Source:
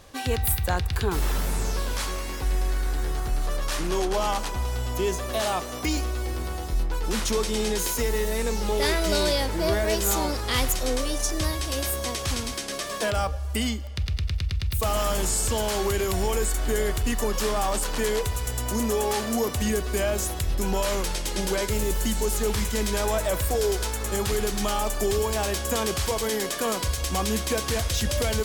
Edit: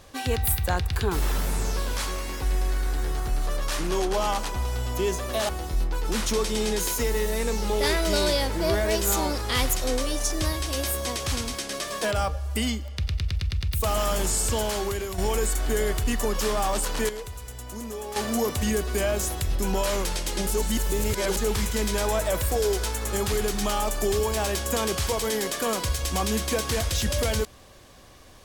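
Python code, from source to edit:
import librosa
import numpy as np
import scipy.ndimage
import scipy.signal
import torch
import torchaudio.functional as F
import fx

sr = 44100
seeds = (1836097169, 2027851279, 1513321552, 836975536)

y = fx.edit(x, sr, fx.cut(start_s=5.49, length_s=0.99),
    fx.fade_out_to(start_s=15.58, length_s=0.59, floor_db=-8.5),
    fx.clip_gain(start_s=18.08, length_s=1.07, db=-10.0),
    fx.reverse_span(start_s=21.46, length_s=0.9), tone=tone)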